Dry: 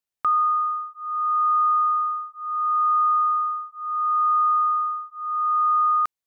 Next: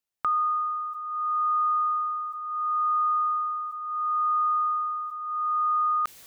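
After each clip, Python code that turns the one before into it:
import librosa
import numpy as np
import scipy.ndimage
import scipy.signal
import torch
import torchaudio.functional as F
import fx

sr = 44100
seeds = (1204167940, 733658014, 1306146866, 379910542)

y = fx.dynamic_eq(x, sr, hz=1000.0, q=1.3, threshold_db=-36.0, ratio=4.0, max_db=-6)
y = fx.sustainer(y, sr, db_per_s=20.0)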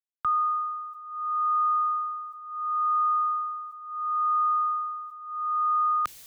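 y = fx.band_widen(x, sr, depth_pct=70)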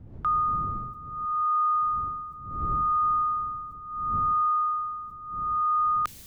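y = fx.dmg_wind(x, sr, seeds[0], corner_hz=130.0, level_db=-42.0)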